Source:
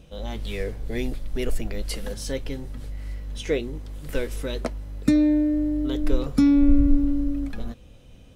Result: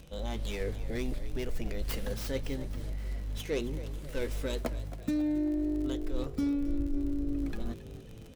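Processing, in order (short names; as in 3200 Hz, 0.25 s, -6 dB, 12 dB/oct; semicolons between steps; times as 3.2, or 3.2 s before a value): tracing distortion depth 0.21 ms; reverse; compressor 5:1, threshold -26 dBFS, peak gain reduction 14 dB; reverse; crackle 47/s -37 dBFS; frequency-shifting echo 0.271 s, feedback 52%, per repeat +52 Hz, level -15 dB; gain -2.5 dB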